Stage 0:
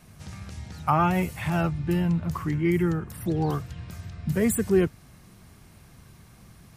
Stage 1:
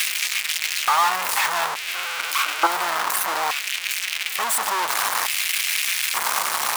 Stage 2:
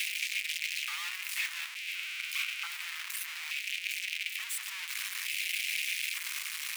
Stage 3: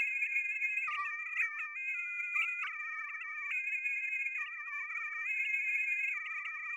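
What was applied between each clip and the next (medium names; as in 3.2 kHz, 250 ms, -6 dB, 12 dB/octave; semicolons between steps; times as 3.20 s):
one-bit comparator; LFO high-pass square 0.57 Hz 980–2400 Hz; time-frequency box 1.95–2.67 s, 220–1600 Hz +11 dB; trim +7 dB
ladder high-pass 2 kHz, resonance 50%; trim -5 dB
formants replaced by sine waves; in parallel at -10 dB: saturation -38 dBFS, distortion -8 dB; on the sum: trim -1.5 dB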